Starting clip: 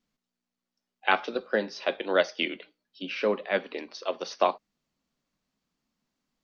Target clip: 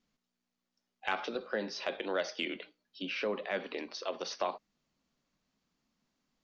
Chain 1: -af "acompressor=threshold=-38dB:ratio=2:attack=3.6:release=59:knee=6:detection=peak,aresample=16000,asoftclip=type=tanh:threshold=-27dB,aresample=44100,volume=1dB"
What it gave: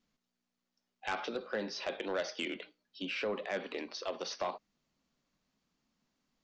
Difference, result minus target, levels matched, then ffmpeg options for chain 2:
soft clip: distortion +17 dB
-af "acompressor=threshold=-38dB:ratio=2:attack=3.6:release=59:knee=6:detection=peak,aresample=16000,asoftclip=type=tanh:threshold=-15dB,aresample=44100,volume=1dB"

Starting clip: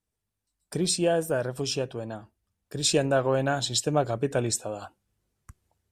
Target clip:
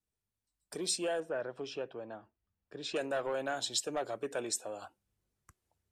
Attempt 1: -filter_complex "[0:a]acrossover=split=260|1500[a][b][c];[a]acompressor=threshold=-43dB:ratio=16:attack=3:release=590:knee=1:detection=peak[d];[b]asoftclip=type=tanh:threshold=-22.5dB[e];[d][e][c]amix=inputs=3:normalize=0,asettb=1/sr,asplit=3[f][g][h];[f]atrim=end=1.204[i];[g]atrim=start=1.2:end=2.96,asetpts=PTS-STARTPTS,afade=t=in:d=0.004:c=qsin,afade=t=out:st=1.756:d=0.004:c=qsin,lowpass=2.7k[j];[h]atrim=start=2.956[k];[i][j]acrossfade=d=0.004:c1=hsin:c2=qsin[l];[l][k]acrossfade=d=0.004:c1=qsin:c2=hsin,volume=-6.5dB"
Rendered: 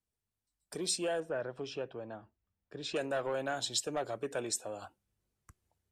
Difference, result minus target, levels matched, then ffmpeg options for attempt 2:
compressor: peak gain reduction -7 dB
-filter_complex "[0:a]acrossover=split=260|1500[a][b][c];[a]acompressor=threshold=-50.5dB:ratio=16:attack=3:release=590:knee=1:detection=peak[d];[b]asoftclip=type=tanh:threshold=-22.5dB[e];[d][e][c]amix=inputs=3:normalize=0,asettb=1/sr,asplit=3[f][g][h];[f]atrim=end=1.204[i];[g]atrim=start=1.2:end=2.96,asetpts=PTS-STARTPTS,afade=t=in:d=0.004:c=qsin,afade=t=out:st=1.756:d=0.004:c=qsin,lowpass=2.7k[j];[h]atrim=start=2.956[k];[i][j]acrossfade=d=0.004:c1=hsin:c2=qsin[l];[l][k]acrossfade=d=0.004:c1=qsin:c2=hsin,volume=-6.5dB"

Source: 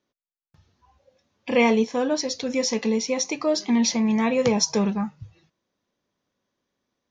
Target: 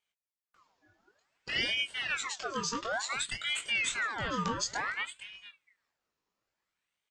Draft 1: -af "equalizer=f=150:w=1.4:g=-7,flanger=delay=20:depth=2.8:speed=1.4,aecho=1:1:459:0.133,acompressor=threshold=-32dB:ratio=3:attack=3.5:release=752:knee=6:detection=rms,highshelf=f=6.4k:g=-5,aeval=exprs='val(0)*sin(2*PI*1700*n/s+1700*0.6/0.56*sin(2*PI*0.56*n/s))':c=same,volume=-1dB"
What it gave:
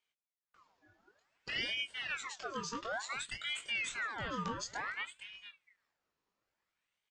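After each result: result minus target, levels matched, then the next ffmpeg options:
compressor: peak gain reduction +5.5 dB; 8000 Hz band -3.0 dB
-af "equalizer=f=150:w=1.4:g=-7,flanger=delay=20:depth=2.8:speed=1.4,aecho=1:1:459:0.133,acompressor=threshold=-23.5dB:ratio=3:attack=3.5:release=752:knee=6:detection=rms,highshelf=f=6.4k:g=-5,aeval=exprs='val(0)*sin(2*PI*1700*n/s+1700*0.6/0.56*sin(2*PI*0.56*n/s))':c=same,volume=-1dB"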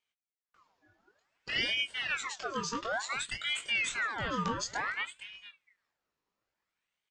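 8000 Hz band -3.0 dB
-af "equalizer=f=150:w=1.4:g=-7,flanger=delay=20:depth=2.8:speed=1.4,aecho=1:1:459:0.133,acompressor=threshold=-23.5dB:ratio=3:attack=3.5:release=752:knee=6:detection=rms,highshelf=f=6.4k:g=3.5,aeval=exprs='val(0)*sin(2*PI*1700*n/s+1700*0.6/0.56*sin(2*PI*0.56*n/s))':c=same,volume=-1dB"

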